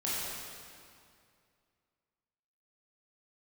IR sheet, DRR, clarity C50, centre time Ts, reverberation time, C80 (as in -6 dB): -9.0 dB, -3.5 dB, 158 ms, 2.3 s, -1.5 dB